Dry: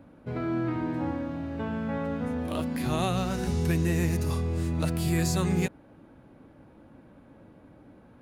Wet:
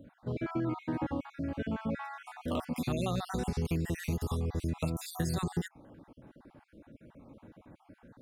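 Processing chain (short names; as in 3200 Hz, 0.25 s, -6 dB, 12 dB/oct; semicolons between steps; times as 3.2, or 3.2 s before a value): random spectral dropouts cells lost 47%; compressor, threshold -28 dBFS, peak gain reduction 6.5 dB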